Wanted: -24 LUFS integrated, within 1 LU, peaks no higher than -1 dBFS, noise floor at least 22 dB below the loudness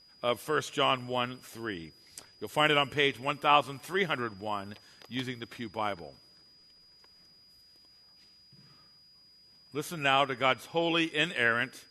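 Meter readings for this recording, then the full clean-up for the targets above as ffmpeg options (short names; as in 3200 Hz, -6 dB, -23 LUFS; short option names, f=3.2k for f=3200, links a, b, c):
steady tone 4900 Hz; tone level -57 dBFS; loudness -29.5 LUFS; peak -9.5 dBFS; loudness target -24.0 LUFS
-> -af "bandreject=f=4.9k:w=30"
-af "volume=5.5dB"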